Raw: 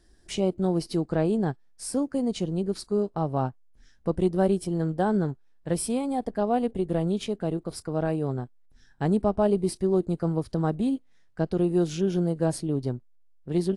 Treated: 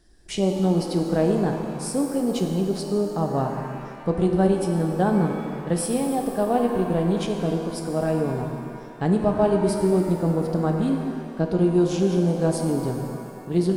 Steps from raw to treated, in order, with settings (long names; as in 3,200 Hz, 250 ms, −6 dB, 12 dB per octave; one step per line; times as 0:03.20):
reverb with rising layers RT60 2.3 s, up +7 semitones, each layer −8 dB, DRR 3.5 dB
level +2 dB